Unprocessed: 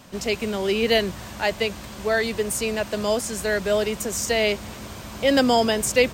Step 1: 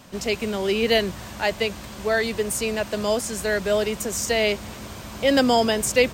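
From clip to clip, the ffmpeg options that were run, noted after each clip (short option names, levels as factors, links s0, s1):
-af anull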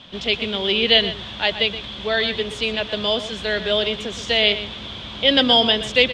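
-filter_complex "[0:a]lowpass=f=3400:t=q:w=9.8,asplit=2[s0][s1];[s1]adelay=122.4,volume=0.251,highshelf=f=4000:g=-2.76[s2];[s0][s2]amix=inputs=2:normalize=0,volume=0.891"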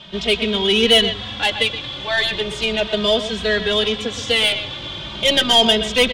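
-filter_complex "[0:a]aeval=exprs='(tanh(3.55*val(0)+0.15)-tanh(0.15))/3.55':c=same,asplit=2[s0][s1];[s1]adelay=2.8,afreqshift=0.37[s2];[s0][s2]amix=inputs=2:normalize=1,volume=2.24"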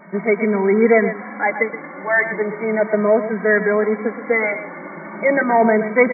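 -af "afftfilt=real='re*between(b*sr/4096,160,2300)':imag='im*between(b*sr/4096,160,2300)':win_size=4096:overlap=0.75,volume=1.58"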